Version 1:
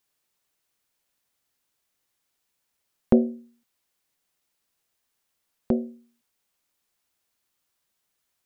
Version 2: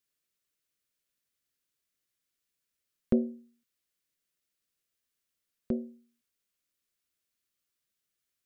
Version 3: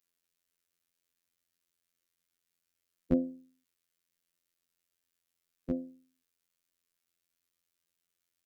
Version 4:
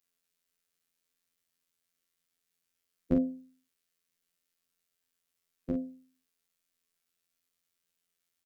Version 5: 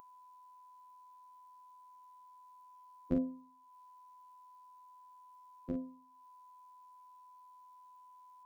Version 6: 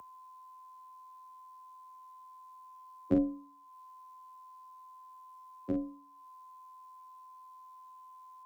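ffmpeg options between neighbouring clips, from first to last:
-af "equalizer=f=840:w=2.5:g=-14,volume=-7dB"
-af "afftfilt=real='hypot(re,im)*cos(PI*b)':imag='0':win_size=2048:overlap=0.75,volume=3.5dB"
-filter_complex "[0:a]asplit=2[a][b];[b]adelay=42,volume=-5dB[c];[a][c]amix=inputs=2:normalize=0"
-af "aeval=exprs='val(0)+0.00158*sin(2*PI*1000*n/s)':c=same,acompressor=mode=upward:threshold=-47dB:ratio=2.5,volume=-5.5dB"
-af "afreqshift=26,volume=5dB"

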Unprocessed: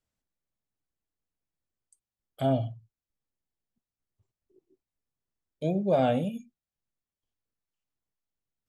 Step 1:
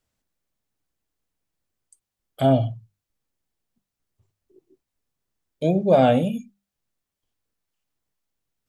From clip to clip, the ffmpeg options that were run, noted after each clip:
-af "bandreject=f=50:t=h:w=6,bandreject=f=100:t=h:w=6,bandreject=f=150:t=h:w=6,bandreject=f=200:t=h:w=6,volume=8dB"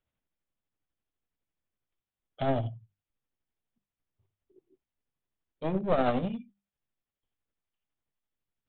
-af "aresample=8000,aeval=exprs='clip(val(0),-1,0.0562)':c=same,aresample=44100,tremolo=f=12:d=0.43,volume=-5dB"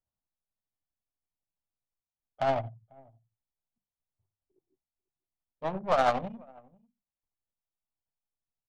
-af "lowshelf=f=570:t=q:w=1.5:g=-10.5,aecho=1:1:494:0.0708,adynamicsmooth=sensitivity=3:basefreq=520,volume=4.5dB"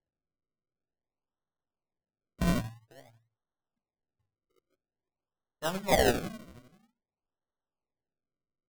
-af "acrusher=samples=35:mix=1:aa=0.000001:lfo=1:lforange=35:lforate=0.5"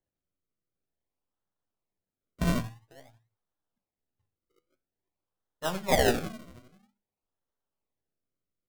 -af "flanger=delay=9.8:depth=2.9:regen=77:speed=0.57:shape=sinusoidal,volume=5.5dB"

